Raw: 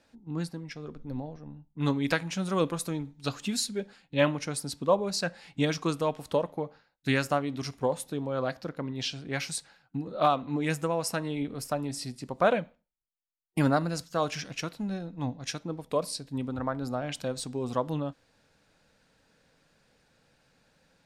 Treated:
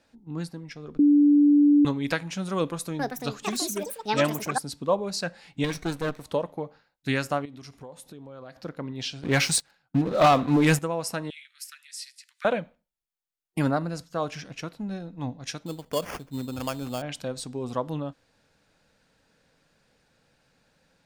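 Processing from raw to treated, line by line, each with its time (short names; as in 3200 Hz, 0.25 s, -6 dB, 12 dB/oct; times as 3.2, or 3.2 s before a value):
0.99–1.85 bleep 291 Hz -14 dBFS
2.54–4.92 echoes that change speed 0.453 s, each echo +7 st, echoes 2
5.64–6.24 minimum comb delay 0.49 ms
7.45–8.57 compressor 4:1, threshold -42 dBFS
9.23–10.79 sample leveller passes 3
11.3–12.45 steep high-pass 1600 Hz 48 dB/oct
13.71–14.9 high shelf 2000 Hz -5.5 dB
15.66–17.02 sample-rate reducer 3900 Hz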